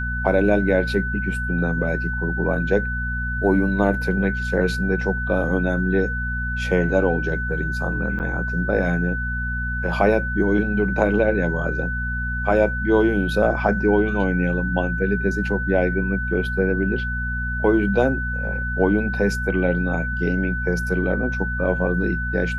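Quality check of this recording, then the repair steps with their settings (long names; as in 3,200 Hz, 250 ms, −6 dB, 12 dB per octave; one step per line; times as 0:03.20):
mains hum 60 Hz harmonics 4 −27 dBFS
whistle 1,500 Hz −26 dBFS
0:08.19–0:08.20: drop-out 9.5 ms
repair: hum removal 60 Hz, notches 4
notch filter 1,500 Hz, Q 30
repair the gap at 0:08.19, 9.5 ms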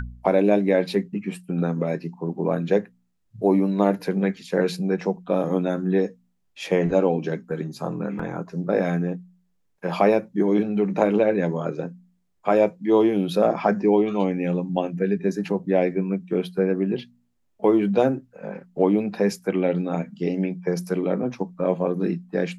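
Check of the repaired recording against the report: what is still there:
none of them is left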